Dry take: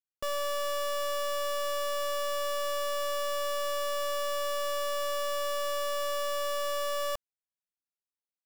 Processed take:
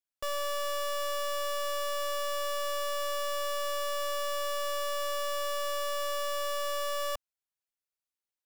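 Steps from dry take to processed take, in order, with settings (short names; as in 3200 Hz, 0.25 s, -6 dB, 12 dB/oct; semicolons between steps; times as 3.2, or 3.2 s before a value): bell 210 Hz -9.5 dB 1.6 oct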